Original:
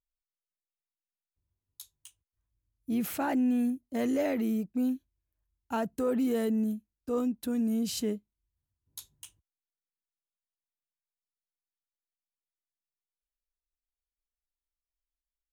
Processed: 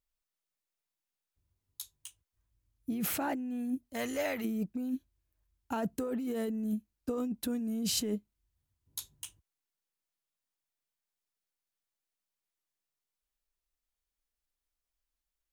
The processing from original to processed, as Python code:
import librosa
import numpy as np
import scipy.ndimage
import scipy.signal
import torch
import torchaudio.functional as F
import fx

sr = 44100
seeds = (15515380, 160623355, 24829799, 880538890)

y = fx.peak_eq(x, sr, hz=290.0, db=-14.5, octaves=2.2, at=(3.9, 4.44), fade=0.02)
y = fx.over_compress(y, sr, threshold_db=-33.0, ratio=-1.0)